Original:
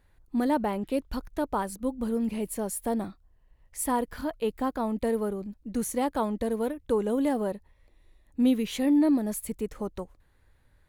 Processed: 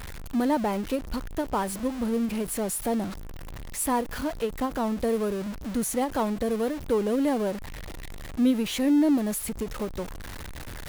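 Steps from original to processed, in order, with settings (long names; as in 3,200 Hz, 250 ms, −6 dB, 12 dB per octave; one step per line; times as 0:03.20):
converter with a step at zero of −32 dBFS
every ending faded ahead of time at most 190 dB per second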